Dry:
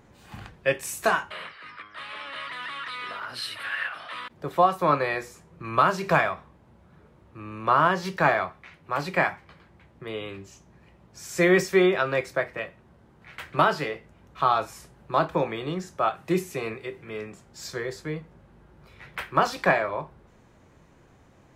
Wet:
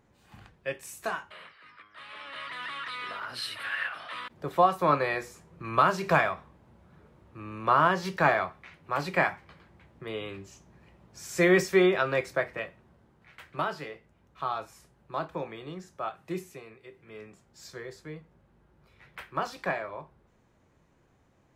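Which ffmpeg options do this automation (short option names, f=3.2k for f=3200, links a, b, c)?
-af "volume=6.5dB,afade=t=in:st=1.89:d=0.75:silence=0.398107,afade=t=out:st=12.53:d=0.86:silence=0.398107,afade=t=out:st=16.47:d=0.19:silence=0.398107,afade=t=in:st=16.66:d=0.59:silence=0.375837"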